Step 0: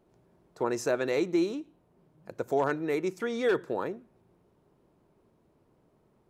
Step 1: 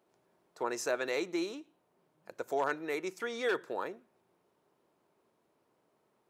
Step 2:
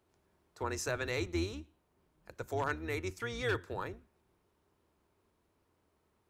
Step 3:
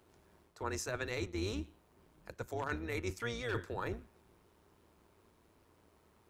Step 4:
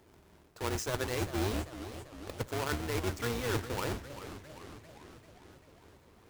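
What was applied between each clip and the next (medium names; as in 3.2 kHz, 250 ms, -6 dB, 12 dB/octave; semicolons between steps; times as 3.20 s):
high-pass 810 Hz 6 dB/octave
octave divider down 2 oct, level 0 dB; peaking EQ 620 Hz -5.5 dB 1.2 oct
reverse; compression 6:1, threshold -43 dBFS, peak gain reduction 14 dB; reverse; AM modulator 110 Hz, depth 30%; trim +10 dB
square wave that keeps the level; modulated delay 399 ms, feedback 63%, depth 202 cents, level -12 dB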